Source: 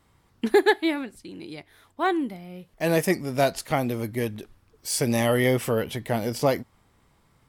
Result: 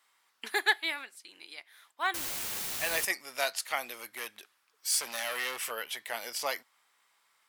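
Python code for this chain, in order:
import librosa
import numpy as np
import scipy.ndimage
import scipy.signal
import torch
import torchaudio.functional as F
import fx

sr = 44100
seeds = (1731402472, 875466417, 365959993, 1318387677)

y = fx.clip_hard(x, sr, threshold_db=-22.0, at=(3.97, 5.71))
y = scipy.signal.sosfilt(scipy.signal.butter(2, 1300.0, 'highpass', fs=sr, output='sos'), y)
y = fx.quant_dither(y, sr, seeds[0], bits=6, dither='triangular', at=(2.14, 3.05))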